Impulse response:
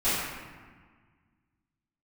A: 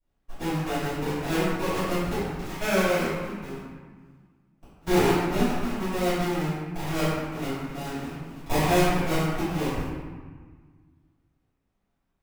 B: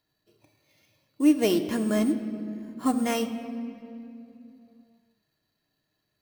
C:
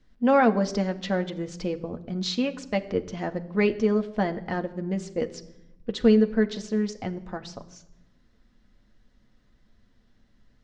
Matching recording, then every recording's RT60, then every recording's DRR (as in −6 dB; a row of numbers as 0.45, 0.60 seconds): A; 1.5 s, 2.7 s, non-exponential decay; −17.0, 4.0, 5.0 decibels